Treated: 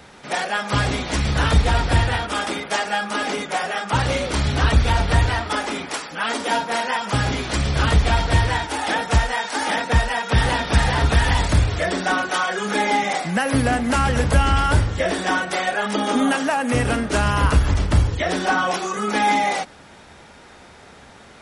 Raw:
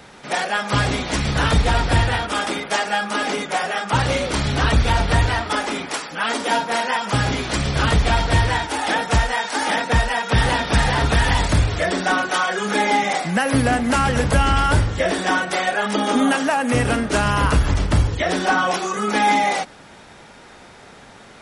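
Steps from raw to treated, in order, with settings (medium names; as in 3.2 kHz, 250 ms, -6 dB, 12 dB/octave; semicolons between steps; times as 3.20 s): peaking EQ 74 Hz +9 dB 0.24 oct; trim -1.5 dB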